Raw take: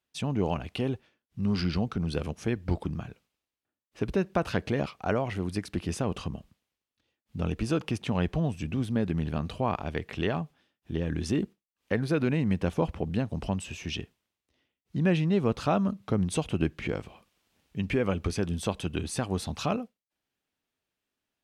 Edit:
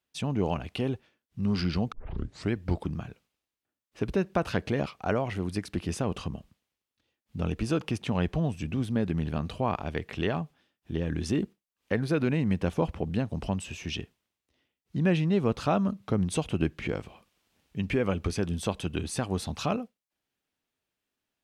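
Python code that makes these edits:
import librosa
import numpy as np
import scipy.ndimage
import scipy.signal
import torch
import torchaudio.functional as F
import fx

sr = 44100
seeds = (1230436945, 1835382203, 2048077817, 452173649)

y = fx.edit(x, sr, fx.tape_start(start_s=1.92, length_s=0.62), tone=tone)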